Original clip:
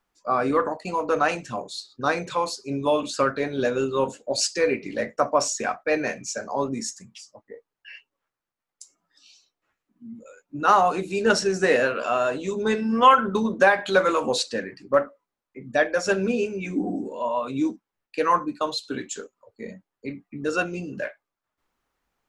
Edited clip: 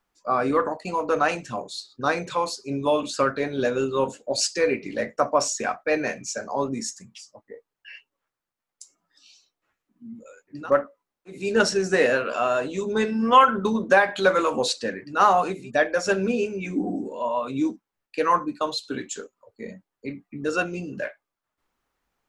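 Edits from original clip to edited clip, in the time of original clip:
10.59–11.07 swap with 14.81–15.59, crossfade 0.24 s

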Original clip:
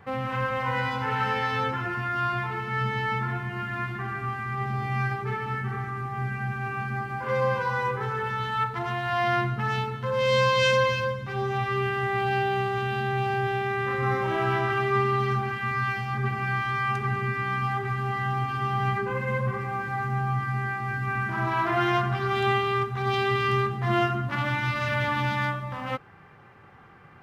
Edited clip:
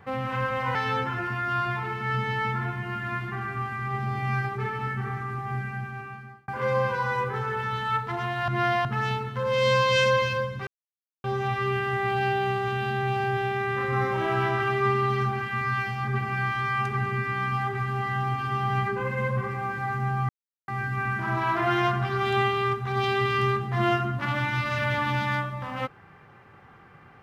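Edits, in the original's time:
0.75–1.42 cut
6.16–7.15 fade out linear
9.15–9.52 reverse
11.34 insert silence 0.57 s
20.39–20.78 mute

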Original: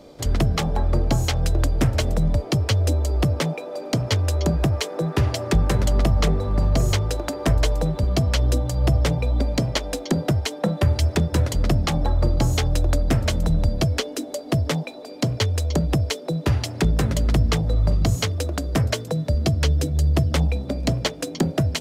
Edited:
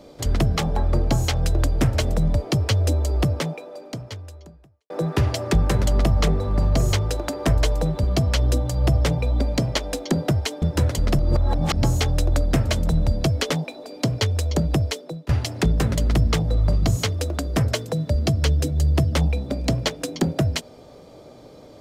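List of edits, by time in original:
3.21–4.9 fade out quadratic
10.62–11.19 cut
11.76–12.4 reverse
14.07–14.69 cut
16.02–16.48 fade out, to -20.5 dB

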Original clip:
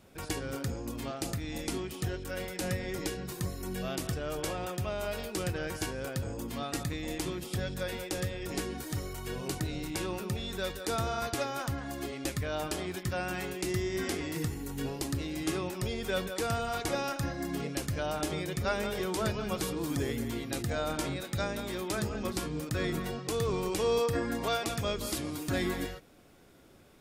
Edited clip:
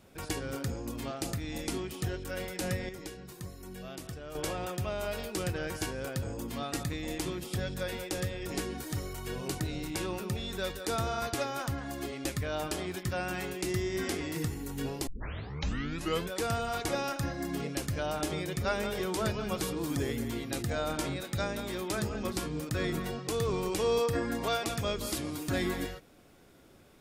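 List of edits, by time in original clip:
2.89–4.35 gain -8 dB
15.07 tape start 1.24 s

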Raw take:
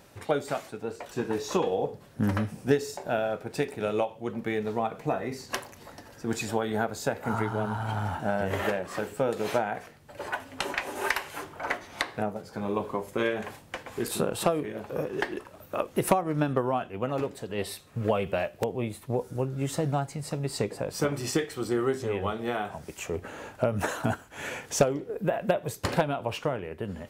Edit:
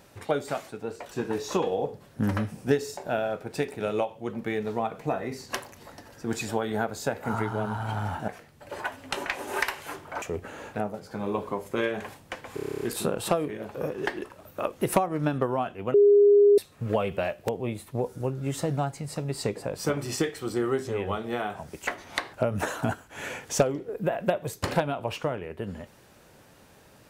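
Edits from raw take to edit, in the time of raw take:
8.28–9.76 cut
11.7–12.16 swap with 23.02–23.54
13.96 stutter 0.03 s, 10 plays
17.09–17.73 bleep 408 Hz -13.5 dBFS

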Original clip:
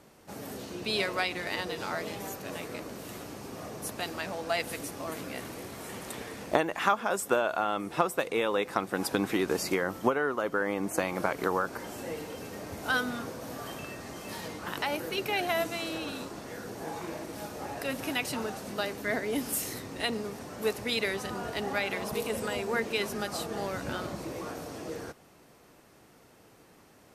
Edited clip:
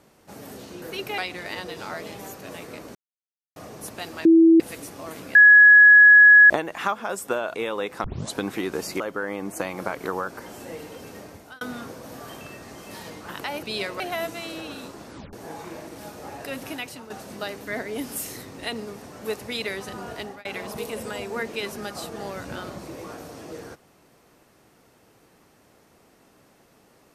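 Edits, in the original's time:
0.82–1.19 swap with 15.01–15.37
2.96–3.57 mute
4.26–4.61 bleep 328 Hz -10 dBFS
5.36–6.51 bleep 1680 Hz -7.5 dBFS
7.55–8.3 cut
8.8 tape start 0.32 s
9.76–10.38 cut
12.56–12.99 fade out
16.44 tape stop 0.26 s
18.03–18.47 fade out, to -12 dB
21.56–21.82 fade out

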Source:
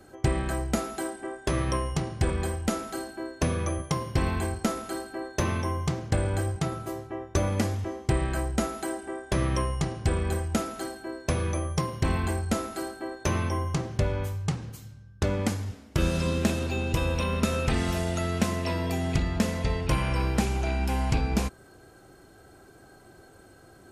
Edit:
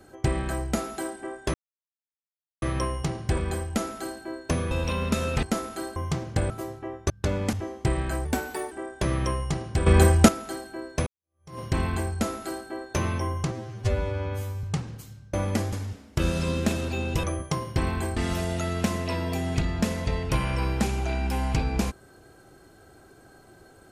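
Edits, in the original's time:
1.54 insert silence 1.08 s
3.63–4.56 swap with 17.02–17.74
5.09–5.72 cut
6.26–6.78 cut
7.38–7.77 swap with 15.08–15.51
8.49–9.02 speed 114%
10.17–10.59 gain +11.5 dB
11.37–11.9 fade in exponential
13.82–14.38 stretch 2×

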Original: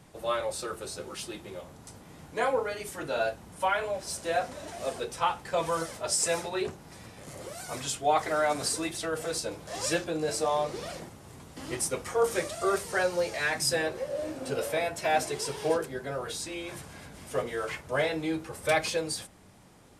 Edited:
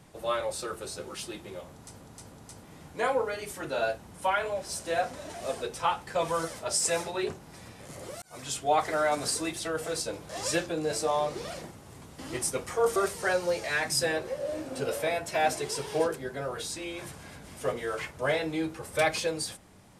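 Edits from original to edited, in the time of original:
1.71–2.02 loop, 3 plays
7.6–7.95 fade in
12.34–12.66 cut

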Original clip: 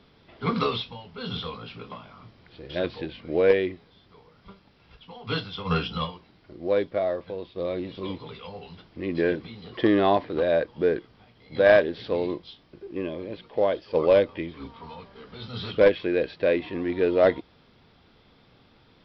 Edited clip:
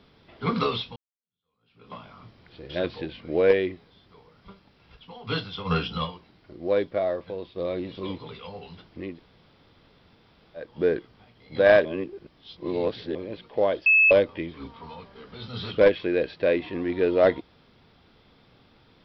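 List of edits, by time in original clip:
0.96–1.94 fade in exponential
9.08–10.66 room tone, crossfade 0.24 s
11.85–13.15 reverse
13.86–14.11 bleep 2600 Hz -14 dBFS

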